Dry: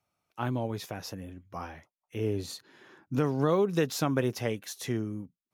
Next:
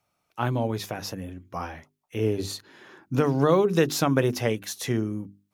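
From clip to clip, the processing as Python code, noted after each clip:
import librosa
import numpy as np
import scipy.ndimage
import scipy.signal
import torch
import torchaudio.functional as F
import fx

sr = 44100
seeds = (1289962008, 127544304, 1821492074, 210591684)

y = fx.hum_notches(x, sr, base_hz=50, count=8)
y = y * librosa.db_to_amplitude(6.0)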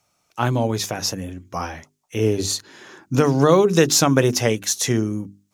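y = fx.peak_eq(x, sr, hz=6600.0, db=10.0, octaves=0.98)
y = y * librosa.db_to_amplitude(5.5)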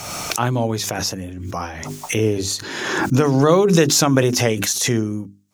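y = fx.pre_swell(x, sr, db_per_s=34.0)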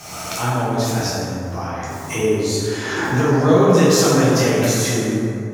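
y = fx.rev_plate(x, sr, seeds[0], rt60_s=2.7, hf_ratio=0.4, predelay_ms=0, drr_db=-9.5)
y = y * librosa.db_to_amplitude(-9.0)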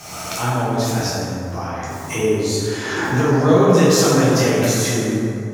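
y = fx.echo_feedback(x, sr, ms=169, feedback_pct=56, wet_db=-22.0)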